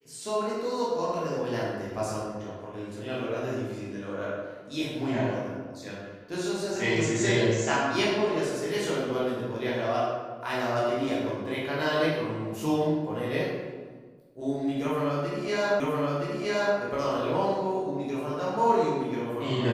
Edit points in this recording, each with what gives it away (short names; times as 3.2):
15.8 repeat of the last 0.97 s